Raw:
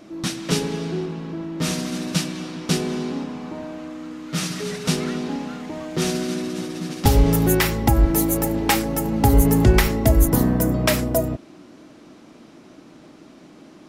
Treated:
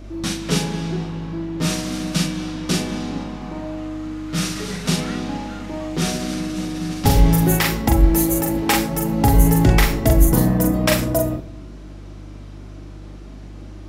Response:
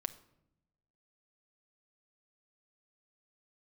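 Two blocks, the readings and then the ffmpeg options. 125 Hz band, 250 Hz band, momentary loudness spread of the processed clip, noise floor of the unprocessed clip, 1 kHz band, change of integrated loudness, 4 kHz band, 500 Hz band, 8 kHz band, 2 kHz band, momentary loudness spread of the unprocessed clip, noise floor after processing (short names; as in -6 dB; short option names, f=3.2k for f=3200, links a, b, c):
+2.0 dB, +1.5 dB, 23 LU, -47 dBFS, +1.5 dB, +1.5 dB, +2.0 dB, -0.5 dB, +1.5 dB, +2.0 dB, 14 LU, -36 dBFS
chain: -filter_complex "[0:a]aeval=exprs='val(0)+0.0126*(sin(2*PI*50*n/s)+sin(2*PI*2*50*n/s)/2+sin(2*PI*3*50*n/s)/3+sin(2*PI*4*50*n/s)/4+sin(2*PI*5*50*n/s)/5)':c=same,flanger=delay=3.3:depth=3.7:regen=-72:speed=0.36:shape=sinusoidal,asplit=2[a][b];[1:a]atrim=start_sample=2205,adelay=42[c];[b][c]afir=irnorm=-1:irlink=0,volume=-2.5dB[d];[a][d]amix=inputs=2:normalize=0,volume=4.5dB"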